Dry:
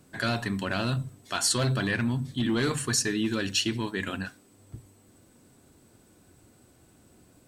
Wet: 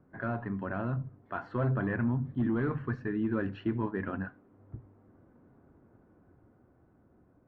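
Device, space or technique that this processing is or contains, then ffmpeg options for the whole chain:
action camera in a waterproof case: -filter_complex "[0:a]asettb=1/sr,asplit=3[a][b][c];[a]atrim=end=2.474[d];[b]atrim=start=2.47:end=3.29,asetpts=PTS-STARTPTS,afade=t=in:d=0.004:c=qsin,afade=t=out:st=0.816:d=0.004:c=qsin,equalizer=f=680:t=o:w=2.4:g=-4.5[e];[c]atrim=start=3.286[f];[d][e]acrossfade=d=0.004:c1=hsin:c2=qsin[g];[g][f]acrossfade=d=0.004:c1=qsin:c2=hsin,lowpass=f=1.5k:w=0.5412,lowpass=f=1.5k:w=1.3066,dynaudnorm=f=470:g=7:m=3.5dB,volume=-4.5dB" -ar 32000 -c:a aac -b:a 48k

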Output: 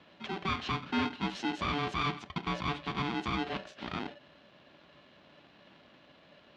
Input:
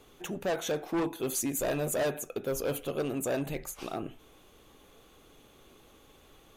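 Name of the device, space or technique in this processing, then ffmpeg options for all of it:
ring modulator pedal into a guitar cabinet: -af "aeval=exprs='val(0)*sgn(sin(2*PI*580*n/s))':c=same,highpass=95,equalizer=f=110:t=q:w=4:g=-8,equalizer=f=510:t=q:w=4:g=-6,equalizer=f=920:t=q:w=4:g=-9,equalizer=f=1.3k:t=q:w=4:g=-3,equalizer=f=2k:t=q:w=4:g=-5,lowpass=f=3.7k:w=0.5412,lowpass=f=3.7k:w=1.3066,volume=2.5dB"

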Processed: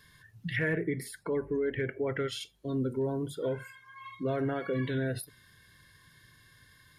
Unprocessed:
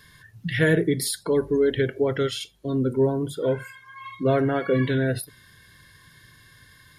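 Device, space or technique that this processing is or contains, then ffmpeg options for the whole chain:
clipper into limiter: -filter_complex "[0:a]asoftclip=type=hard:threshold=-12dB,alimiter=limit=-16.5dB:level=0:latency=1:release=81,asettb=1/sr,asplit=3[a][b][c];[a]atrim=end=0.564[d];[b]atrim=start=0.56:end=2.28,asetpts=PTS-STARTPTS,afade=t=in:d=0.004:c=qsin,afade=t=out:st=1.716:d=0.004:c=qsin,highshelf=f=2.9k:t=q:w=3:g=-8.5[e];[c]atrim=start=2.276[f];[d][e]acrossfade=d=0.004:c1=hsin:c2=qsin[g];[g][f]acrossfade=d=0.004:c1=qsin:c2=hsin,volume=-7dB"

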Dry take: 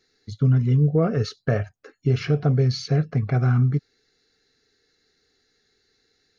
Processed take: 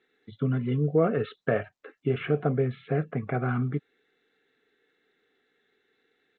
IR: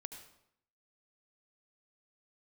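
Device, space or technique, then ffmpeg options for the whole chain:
Bluetooth headset: -filter_complex "[0:a]asettb=1/sr,asplit=3[a][b][c];[a]atrim=end=2.154[d];[b]atrim=start=2.15:end=3.49,asetpts=PTS-STARTPTS,afade=t=in:d=0.004:c=qsin,afade=t=out:st=1.336:d=0.004:c=qsin,lowpass=2.6k[e];[c]atrim=start=3.486[f];[d][e]acrossfade=d=0.004:c1=hsin:c2=qsin[g];[g][f]acrossfade=d=0.004:c1=qsin:c2=hsin,highpass=230,aresample=8000,aresample=44100" -ar 16000 -c:a sbc -b:a 64k

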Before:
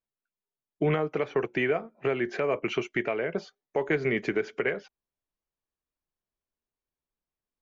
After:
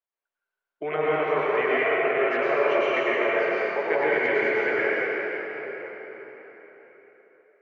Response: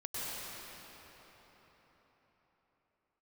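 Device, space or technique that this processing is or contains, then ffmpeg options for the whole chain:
cathedral: -filter_complex "[1:a]atrim=start_sample=2205[a];[0:a][a]afir=irnorm=-1:irlink=0,acrossover=split=430 3000:gain=0.0794 1 0.2[b][c][d];[b][c][d]amix=inputs=3:normalize=0,volume=6dB"

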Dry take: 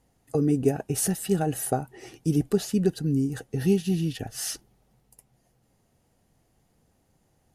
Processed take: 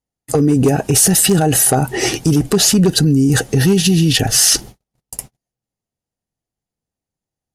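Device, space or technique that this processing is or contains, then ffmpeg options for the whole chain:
loud club master: -af "acompressor=threshold=-28dB:ratio=2,asoftclip=type=hard:threshold=-21dB,alimiter=level_in=31.5dB:limit=-1dB:release=50:level=0:latency=1,agate=range=-46dB:threshold=-27dB:ratio=16:detection=peak,equalizer=f=5.8k:w=0.57:g=5.5,volume=-5.5dB"

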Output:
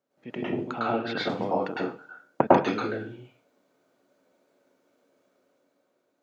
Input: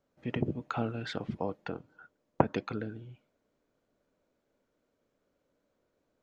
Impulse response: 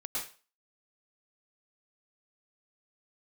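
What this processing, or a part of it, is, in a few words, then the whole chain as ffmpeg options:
far laptop microphone: -filter_complex "[1:a]atrim=start_sample=2205[a];[0:a][a]afir=irnorm=-1:irlink=0,highpass=190,dynaudnorm=f=250:g=7:m=6dB,asplit=3[b][c][d];[b]afade=t=out:st=0.79:d=0.02[e];[c]lowpass=f=5.1k:w=0.5412,lowpass=f=5.1k:w=1.3066,afade=t=in:st=0.79:d=0.02,afade=t=out:st=1.28:d=0.02[f];[d]afade=t=in:st=1.28:d=0.02[g];[e][f][g]amix=inputs=3:normalize=0,volume=1.5dB"

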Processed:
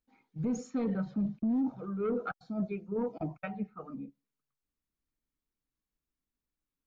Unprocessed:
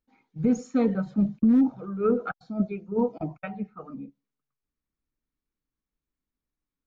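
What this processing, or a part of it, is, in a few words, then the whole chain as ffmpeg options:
soft clipper into limiter: -filter_complex "[0:a]asettb=1/sr,asplit=3[a][b][c];[a]atrim=end=0.704[d];[b]atrim=start=0.7:end=1.56,asetpts=PTS-STARTPTS,afade=t=in:d=0.004:c=qsin,afade=t=out:st=0.856:d=0.004:c=qsin,lowpass=f=5.9k:w=0.5412,lowpass=f=5.9k:w=1.3066[e];[c]atrim=start=1.556[f];[d][e]acrossfade=d=0.004:c1=hsin:c2=qsin[g];[g][f]acrossfade=d=0.004:c1=qsin:c2=hsin,asoftclip=type=tanh:threshold=-15.5dB,alimiter=limit=-22.5dB:level=0:latency=1:release=11,volume=-3dB"

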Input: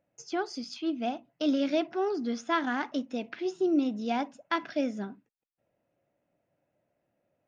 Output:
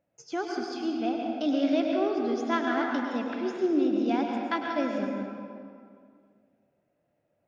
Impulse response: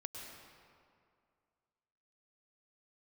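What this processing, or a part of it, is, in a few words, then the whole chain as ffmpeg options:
swimming-pool hall: -filter_complex "[1:a]atrim=start_sample=2205[a];[0:a][a]afir=irnorm=-1:irlink=0,highshelf=f=4.5k:g=-5,volume=4.5dB"

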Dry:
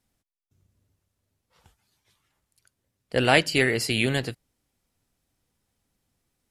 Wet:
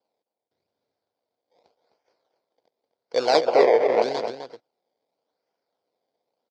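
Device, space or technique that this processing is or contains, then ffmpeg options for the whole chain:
circuit-bent sampling toy: -filter_complex "[0:a]acrusher=samples=22:mix=1:aa=0.000001:lfo=1:lforange=22:lforate=0.86,highpass=480,equalizer=f=480:t=q:w=4:g=7,equalizer=f=690:t=q:w=4:g=4,equalizer=f=1.2k:t=q:w=4:g=-10,equalizer=f=1.8k:t=q:w=4:g=-9,equalizer=f=2.7k:t=q:w=4:g=-9,equalizer=f=4.7k:t=q:w=4:g=7,lowpass=f=5.2k:w=0.5412,lowpass=f=5.2k:w=1.3066,asettb=1/sr,asplit=3[a][b][c];[a]atrim=end=3.414[d];[b]atrim=start=3.41:end=4.02,asetpts=PTS-STARTPTS,afade=t=in:d=0.004:c=qsin,afade=t=out:st=0.606:d=0.004:c=qsin,equalizer=f=500:t=o:w=1:g=10,equalizer=f=2k:t=o:w=1:g=12,equalizer=f=4k:t=o:w=1:g=-11,equalizer=f=8k:t=o:w=1:g=-10[e];[c]atrim=start=4.016[f];[d][e]acrossfade=d=0.004:c1=hsin:c2=qsin[g];[g][f]acrossfade=d=0.004:c1=qsin:c2=hsin,asplit=2[h][i];[i]adelay=256.6,volume=-8dB,highshelf=f=4k:g=-5.77[j];[h][j]amix=inputs=2:normalize=0"

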